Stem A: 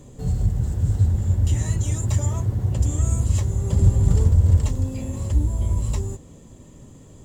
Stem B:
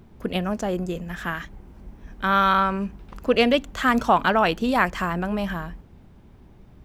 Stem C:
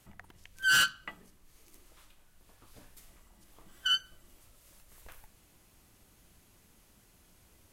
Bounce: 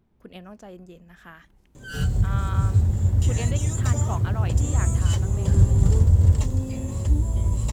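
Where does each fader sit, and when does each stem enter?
-0.5 dB, -16.5 dB, -13.5 dB; 1.75 s, 0.00 s, 1.20 s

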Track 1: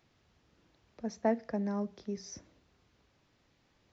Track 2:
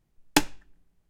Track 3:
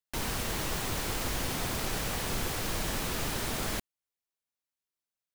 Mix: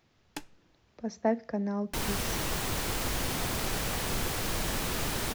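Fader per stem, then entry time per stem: +2.0 dB, -19.5 dB, +1.0 dB; 0.00 s, 0.00 s, 1.80 s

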